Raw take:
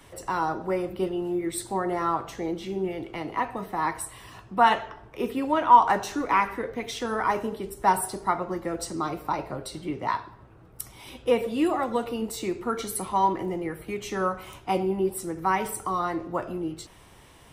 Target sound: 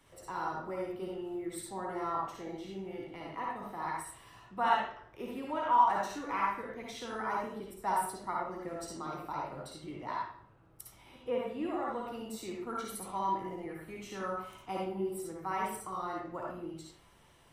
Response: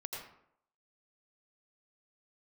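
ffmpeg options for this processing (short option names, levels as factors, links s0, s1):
-filter_complex "[0:a]asettb=1/sr,asplit=3[s0][s1][s2];[s0]atrim=end=10.954[s3];[s1]atrim=start=10.95:end=12.08,asetpts=PTS-STARTPTS,afade=t=in:d=0.004:c=qsin,afade=t=out:st=1.126:d=0.004:c=qsin,acrossover=split=2800[s4][s5];[s5]acompressor=threshold=0.00158:ratio=4:attack=1:release=60[s6];[s4][s6]amix=inputs=2:normalize=0[s7];[s2]atrim=start=12.076[s8];[s3][s7]acrossfade=d=0.004:c1=hsin:c2=qsin[s9];[s9][s8]acrossfade=d=0.004:c1=qsin:c2=hsin[s10];[1:a]atrim=start_sample=2205,asetrate=66150,aresample=44100[s11];[s10][s11]afir=irnorm=-1:irlink=0,volume=0.531"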